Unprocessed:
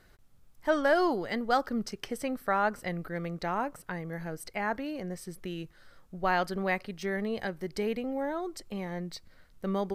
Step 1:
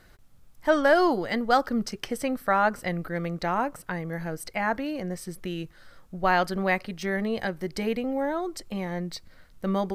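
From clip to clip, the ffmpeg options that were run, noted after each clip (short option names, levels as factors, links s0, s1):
-af "bandreject=f=410:w=12,volume=1.78"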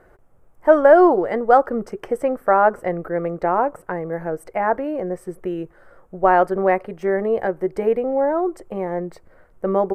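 -af "firequalizer=gain_entry='entry(250,0);entry(380,12);entry(4000,-19);entry(8000,-7);entry(13000,-9)':delay=0.05:min_phase=1"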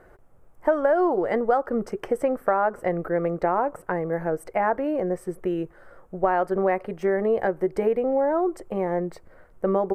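-af "acompressor=threshold=0.126:ratio=6"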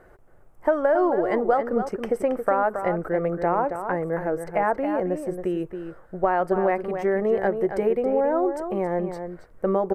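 -filter_complex "[0:a]asplit=2[s0][s1];[s1]adelay=274.1,volume=0.398,highshelf=f=4000:g=-6.17[s2];[s0][s2]amix=inputs=2:normalize=0"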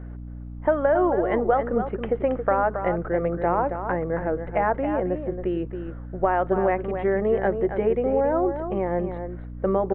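-af "aeval=exprs='val(0)+0.0178*(sin(2*PI*60*n/s)+sin(2*PI*2*60*n/s)/2+sin(2*PI*3*60*n/s)/3+sin(2*PI*4*60*n/s)/4+sin(2*PI*5*60*n/s)/5)':c=same,aresample=8000,aresample=44100"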